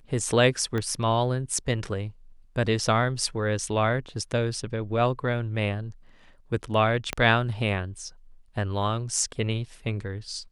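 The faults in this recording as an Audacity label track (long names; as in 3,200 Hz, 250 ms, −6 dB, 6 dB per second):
0.780000	0.780000	click −17 dBFS
7.130000	7.130000	click −12 dBFS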